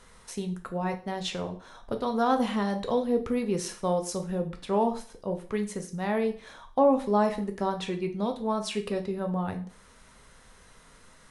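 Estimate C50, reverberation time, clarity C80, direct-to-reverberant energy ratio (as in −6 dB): 12.5 dB, 0.45 s, 17.5 dB, 5.0 dB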